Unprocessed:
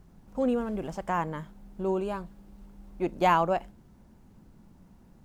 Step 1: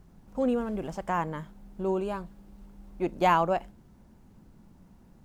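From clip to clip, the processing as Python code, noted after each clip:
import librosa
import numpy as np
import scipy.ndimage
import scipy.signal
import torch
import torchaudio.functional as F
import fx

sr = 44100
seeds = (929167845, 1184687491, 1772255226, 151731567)

y = x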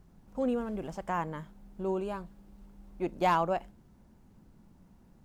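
y = np.clip(x, -10.0 ** (-14.5 / 20.0), 10.0 ** (-14.5 / 20.0))
y = F.gain(torch.from_numpy(y), -3.5).numpy()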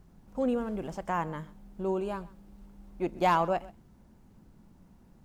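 y = x + 10.0 ** (-20.5 / 20.0) * np.pad(x, (int(130 * sr / 1000.0), 0))[:len(x)]
y = F.gain(torch.from_numpy(y), 1.5).numpy()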